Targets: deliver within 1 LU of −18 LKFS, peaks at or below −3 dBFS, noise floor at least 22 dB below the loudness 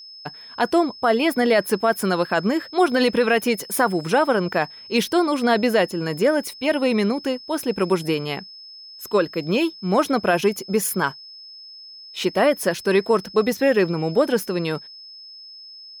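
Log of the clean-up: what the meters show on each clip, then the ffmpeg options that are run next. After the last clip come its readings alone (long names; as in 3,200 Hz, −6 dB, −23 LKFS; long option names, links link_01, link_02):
interfering tone 5,200 Hz; level of the tone −39 dBFS; integrated loudness −21.0 LKFS; sample peak −8.0 dBFS; target loudness −18.0 LKFS
→ -af "bandreject=frequency=5200:width=30"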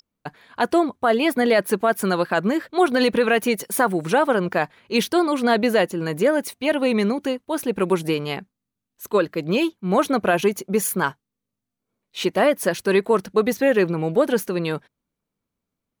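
interfering tone none found; integrated loudness −21.0 LKFS; sample peak −8.0 dBFS; target loudness −18.0 LKFS
→ -af "volume=3dB"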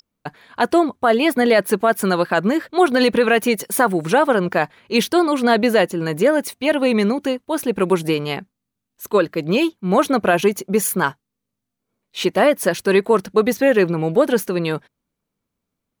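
integrated loudness −18.0 LKFS; sample peak −5.0 dBFS; background noise floor −81 dBFS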